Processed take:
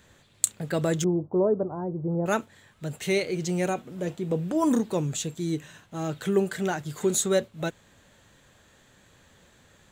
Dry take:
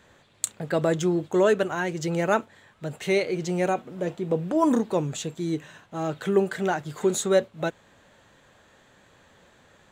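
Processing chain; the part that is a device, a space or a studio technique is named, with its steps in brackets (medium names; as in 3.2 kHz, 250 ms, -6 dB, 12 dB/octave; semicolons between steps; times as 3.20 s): smiley-face EQ (bass shelf 150 Hz +6 dB; peaking EQ 790 Hz -3.5 dB 1.9 oct; treble shelf 5.7 kHz +8.5 dB); 1.04–2.26 s: steep low-pass 1 kHz 36 dB/octave; trim -1.5 dB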